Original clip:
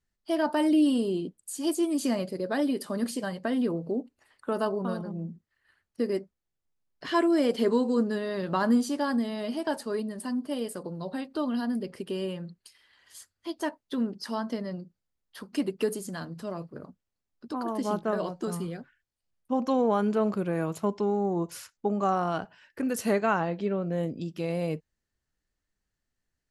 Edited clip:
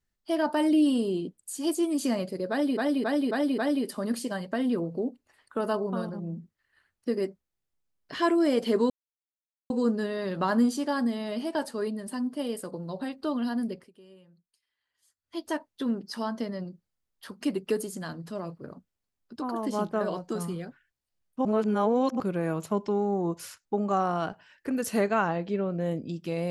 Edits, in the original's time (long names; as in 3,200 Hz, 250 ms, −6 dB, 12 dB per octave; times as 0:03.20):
0:02.50–0:02.77: repeat, 5 plays
0:07.82: splice in silence 0.80 s
0:11.81–0:13.50: duck −21 dB, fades 0.20 s
0:19.57–0:20.32: reverse